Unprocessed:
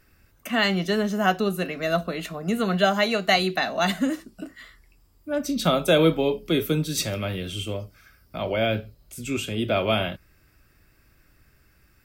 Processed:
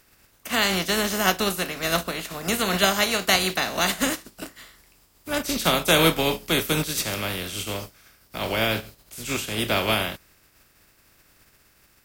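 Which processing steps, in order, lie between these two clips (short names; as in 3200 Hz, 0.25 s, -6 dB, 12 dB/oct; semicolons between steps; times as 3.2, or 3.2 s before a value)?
spectral contrast lowered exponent 0.49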